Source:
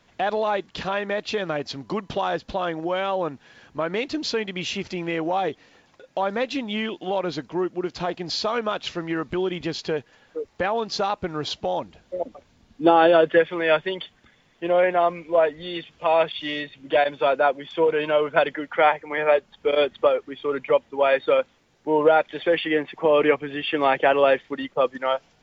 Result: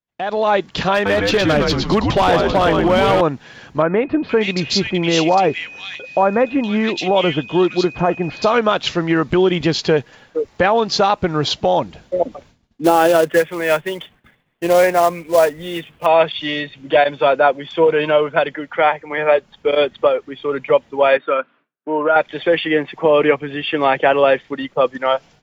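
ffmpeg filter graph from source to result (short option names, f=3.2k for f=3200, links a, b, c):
-filter_complex "[0:a]asettb=1/sr,asplit=3[a][b][c];[a]atrim=end=0.944[d];[b]atrim=start=0.94:end=3.21,asetpts=PTS-STARTPTS,afade=t=in:d=0.004:c=qsin,afade=t=out:st=2.266:d=0.004:c=qsin,asplit=7[e][f][g][h][i][j][k];[f]adelay=113,afreqshift=-110,volume=-4dB[l];[g]adelay=226,afreqshift=-220,volume=-10.6dB[m];[h]adelay=339,afreqshift=-330,volume=-17.1dB[n];[i]adelay=452,afreqshift=-440,volume=-23.7dB[o];[j]adelay=565,afreqshift=-550,volume=-30.2dB[p];[k]adelay=678,afreqshift=-660,volume=-36.8dB[q];[e][l][m][n][o][p][q]amix=inputs=7:normalize=0,atrim=end_sample=100107,asoftclip=type=hard:threshold=-20dB[r];[c]atrim=start=3.206[s];[d][r]acrossfade=d=0.004:c1=hsin:c2=qsin[t];[t][s]acrossfade=d=0.004:c1=qsin:c2=hsin,asettb=1/sr,asplit=3[u][v][w];[u]atrim=end=3.824[x];[v]atrim=start=3.82:end=8.54,asetpts=PTS-STARTPTS,afade=t=in:d=0.004:c=qsin,afade=t=out:st=4.716:d=0.004:c=qsin,aeval=exprs='val(0)+0.00631*sin(2*PI*2500*n/s)':c=same,acrossover=split=2000[y][z];[z]adelay=470[aa];[y][aa]amix=inputs=2:normalize=0,atrim=end_sample=208152[ab];[w]atrim=start=8.536[ac];[x][ab]acrossfade=d=0.004:c1=hsin:c2=qsin[ad];[ad][ac]acrossfade=d=0.004:c1=qsin:c2=hsin,asettb=1/sr,asplit=3[ae][af][ag];[ae]atrim=end=12.844[ah];[af]atrim=start=12.84:end=16.06,asetpts=PTS-STARTPTS,afade=t=in:d=0.004:c=qsin,afade=t=out:st=3.216:d=0.004:c=qsin,lowpass=f=3.2k:w=0.5412,lowpass=f=3.2k:w=1.3066,acrusher=bits=4:mode=log:mix=0:aa=0.000001[ai];[ag]atrim=start=16.056[aj];[ah][ai]acrossfade=d=0.004:c1=hsin:c2=qsin[ak];[ak][aj]acrossfade=d=0.004:c1=qsin:c2=hsin,asettb=1/sr,asplit=3[al][am][an];[al]atrim=end=21.174[ao];[am]atrim=start=21.17:end=22.16,asetpts=PTS-STARTPTS,afade=t=in:d=0.004:c=qsin,afade=t=out:st=0.986:d=0.004:c=qsin,highpass=f=200:w=0.5412,highpass=f=200:w=1.3066,equalizer=f=200:t=q:w=4:g=-9,equalizer=f=350:t=q:w=4:g=-6,equalizer=f=500:t=q:w=4:g=-8,equalizer=f=790:t=q:w=4:g=-4,equalizer=f=1.4k:t=q:w=4:g=5,equalizer=f=2k:t=q:w=4:g=-7,lowpass=f=2.5k:w=0.5412,lowpass=f=2.5k:w=1.3066,bandreject=f=840:w=7[ap];[an]atrim=start=22.156[aq];[ao][ap]acrossfade=d=0.004:c1=hsin:c2=qsin[ar];[ar][aq]acrossfade=d=0.004:c1=qsin:c2=hsin,equalizer=f=140:w=2.1:g=4,dynaudnorm=f=270:g=3:m=12.5dB,agate=range=-33dB:threshold=-40dB:ratio=3:detection=peak,volume=-1dB"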